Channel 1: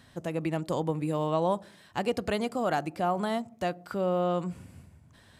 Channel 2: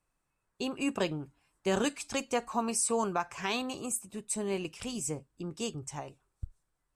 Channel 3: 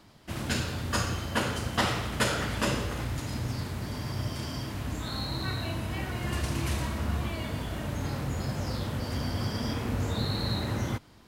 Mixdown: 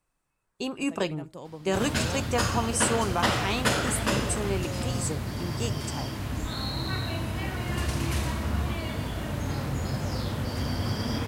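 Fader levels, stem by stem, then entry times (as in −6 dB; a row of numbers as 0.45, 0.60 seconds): −12.0, +2.5, +2.0 decibels; 0.65, 0.00, 1.45 seconds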